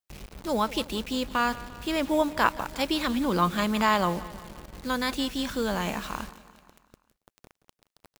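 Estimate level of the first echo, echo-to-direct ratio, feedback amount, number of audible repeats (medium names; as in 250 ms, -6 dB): -17.5 dB, -16.0 dB, 56%, 4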